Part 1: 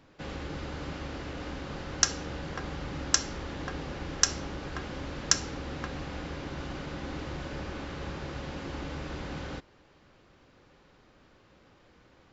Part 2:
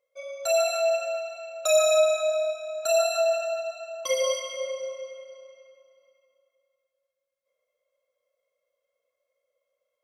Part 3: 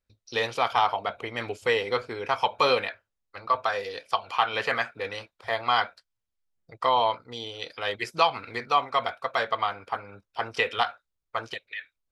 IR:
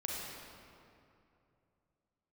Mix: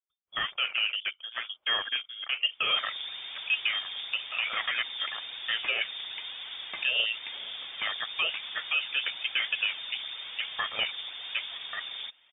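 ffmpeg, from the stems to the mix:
-filter_complex "[0:a]volume=20.5dB,asoftclip=hard,volume=-20.5dB,adelay=2500,volume=-2.5dB[link_01];[2:a]afwtdn=0.02,highpass=frequency=510:poles=1,volume=-0.5dB[link_02];[link_01][link_02]amix=inputs=2:normalize=0,highpass=64,alimiter=limit=-18.5dB:level=0:latency=1:release=41,volume=0dB,aphaser=in_gain=1:out_gain=1:delay=3.8:decay=0.37:speed=1:type=triangular,lowpass=frequency=3100:width_type=q:width=0.5098,lowpass=frequency=3100:width_type=q:width=0.6013,lowpass=frequency=3100:width_type=q:width=0.9,lowpass=frequency=3100:width_type=q:width=2.563,afreqshift=-3700"

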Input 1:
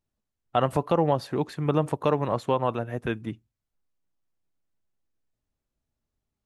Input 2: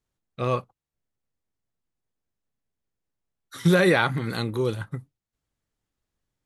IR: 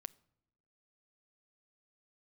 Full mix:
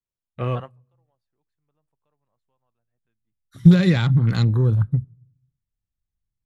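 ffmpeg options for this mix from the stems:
-filter_complex "[0:a]highpass=frequency=340:poles=1,volume=-13.5dB[link_01];[1:a]afwtdn=0.0141,acrossover=split=370|3000[link_02][link_03][link_04];[link_03]acompressor=threshold=-30dB:ratio=6[link_05];[link_02][link_05][link_04]amix=inputs=3:normalize=0,volume=-0.5dB,asplit=3[link_06][link_07][link_08];[link_07]volume=-4dB[link_09];[link_08]apad=whole_len=284839[link_10];[link_01][link_10]sidechaingate=range=-35dB:threshold=-41dB:ratio=16:detection=peak[link_11];[2:a]atrim=start_sample=2205[link_12];[link_09][link_12]afir=irnorm=-1:irlink=0[link_13];[link_11][link_06][link_13]amix=inputs=3:normalize=0,asubboost=boost=8:cutoff=140"

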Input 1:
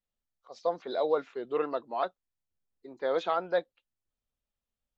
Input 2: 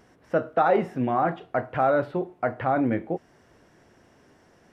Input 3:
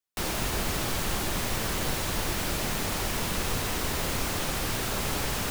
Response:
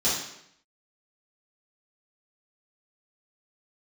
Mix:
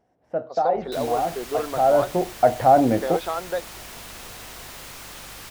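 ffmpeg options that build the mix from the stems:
-filter_complex "[0:a]agate=range=-33dB:threshold=-49dB:ratio=3:detection=peak,acompressor=threshold=-37dB:ratio=2,volume=2dB[link_01];[1:a]firequalizer=gain_entry='entry(390,0);entry(720,9);entry(1100,-5)':delay=0.05:min_phase=1,volume=-2dB,afade=type=in:start_time=1.71:duration=0.54:silence=0.281838[link_02];[2:a]lowshelf=frequency=460:gain=-11.5,aeval=exprs='val(0)+0.00794*(sin(2*PI*50*n/s)+sin(2*PI*2*50*n/s)/2+sin(2*PI*3*50*n/s)/3+sin(2*PI*4*50*n/s)/4+sin(2*PI*5*50*n/s)/5)':channel_layout=same,adelay=750,volume=-13.5dB[link_03];[link_01][link_02][link_03]amix=inputs=3:normalize=0,dynaudnorm=framelen=150:gausssize=3:maxgain=6dB"

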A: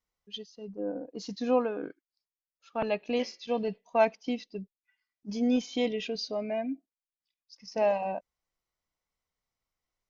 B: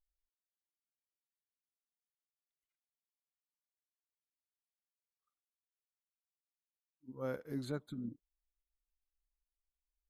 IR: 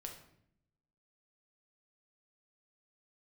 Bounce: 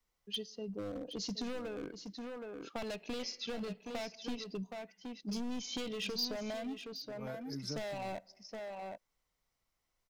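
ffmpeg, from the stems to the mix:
-filter_complex "[0:a]acompressor=threshold=-29dB:ratio=4,asoftclip=type=hard:threshold=-33.5dB,volume=3dB,asplit=3[link_01][link_02][link_03];[link_02]volume=-17dB[link_04];[link_03]volume=-10dB[link_05];[1:a]aecho=1:1:6.5:0.65,volume=-4dB[link_06];[2:a]atrim=start_sample=2205[link_07];[link_04][link_07]afir=irnorm=-1:irlink=0[link_08];[link_05]aecho=0:1:770:1[link_09];[link_01][link_06][link_08][link_09]amix=inputs=4:normalize=0,acrossover=split=140|3000[link_10][link_11][link_12];[link_11]acompressor=threshold=-39dB:ratio=6[link_13];[link_10][link_13][link_12]amix=inputs=3:normalize=0"

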